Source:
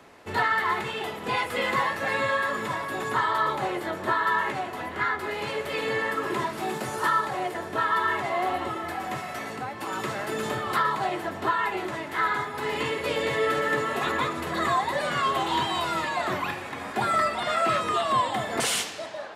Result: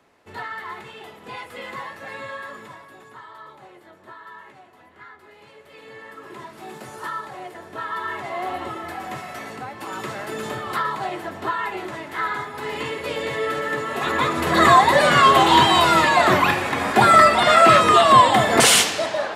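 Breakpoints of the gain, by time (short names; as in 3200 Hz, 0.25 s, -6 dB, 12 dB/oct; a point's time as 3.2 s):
2.51 s -8.5 dB
3.15 s -17.5 dB
5.59 s -17.5 dB
6.82 s -6.5 dB
7.59 s -6.5 dB
8.64 s 0 dB
13.85 s 0 dB
14.62 s +12 dB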